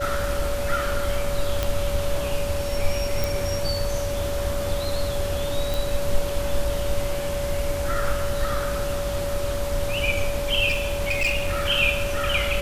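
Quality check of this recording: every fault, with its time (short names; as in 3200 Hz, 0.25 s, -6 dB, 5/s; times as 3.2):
tone 570 Hz -27 dBFS
1.63 pop
3.24 pop
5.74 pop
10.68–11.69 clipped -18.5 dBFS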